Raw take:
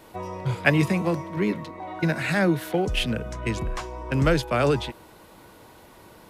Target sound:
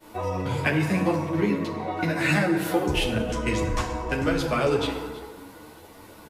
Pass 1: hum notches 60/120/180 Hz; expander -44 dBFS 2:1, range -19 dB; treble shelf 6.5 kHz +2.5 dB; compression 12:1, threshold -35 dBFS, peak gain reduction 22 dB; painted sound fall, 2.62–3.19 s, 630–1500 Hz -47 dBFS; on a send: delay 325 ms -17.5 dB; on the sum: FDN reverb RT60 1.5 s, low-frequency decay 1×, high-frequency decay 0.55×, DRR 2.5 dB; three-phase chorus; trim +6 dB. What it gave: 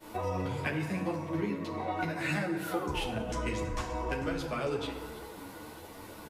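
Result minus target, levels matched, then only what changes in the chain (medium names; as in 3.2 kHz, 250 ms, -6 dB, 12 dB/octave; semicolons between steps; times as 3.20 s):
compression: peak gain reduction +10 dB
change: compression 12:1, threshold -24 dBFS, peak gain reduction 12 dB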